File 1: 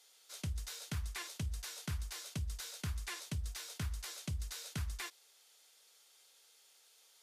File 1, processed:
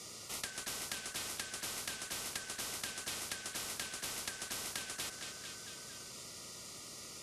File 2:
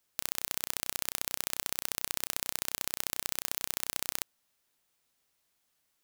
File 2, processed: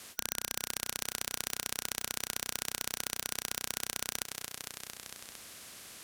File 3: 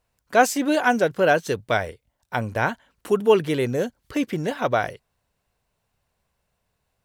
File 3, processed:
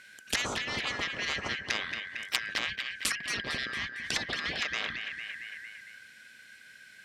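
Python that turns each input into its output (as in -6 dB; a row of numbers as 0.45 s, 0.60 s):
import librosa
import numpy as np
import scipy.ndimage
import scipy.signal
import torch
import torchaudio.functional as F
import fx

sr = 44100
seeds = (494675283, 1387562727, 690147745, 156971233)

p1 = fx.band_shuffle(x, sr, order='4123')
p2 = scipy.signal.sosfilt(scipy.signal.butter(2, 60.0, 'highpass', fs=sr, output='sos'), p1)
p3 = fx.env_lowpass_down(p2, sr, base_hz=1100.0, full_db=-21.5)
p4 = scipy.signal.sosfilt(scipy.signal.butter(2, 10000.0, 'lowpass', fs=sr, output='sos'), p3)
p5 = fx.peak_eq(p4, sr, hz=890.0, db=-9.0, octaves=0.57)
p6 = fx.small_body(p5, sr, hz=(220.0, 1600.0), ring_ms=45, db=7)
p7 = 10.0 ** (-20.0 / 20.0) * np.tanh(p6 / 10.0 ** (-20.0 / 20.0))
p8 = p6 + (p7 * 10.0 ** (-8.0 / 20.0))
p9 = fx.echo_feedback(p8, sr, ms=227, feedback_pct=50, wet_db=-15.5)
y = fx.spectral_comp(p9, sr, ratio=4.0)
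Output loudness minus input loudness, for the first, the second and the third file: +1.5 LU, -2.5 LU, -10.0 LU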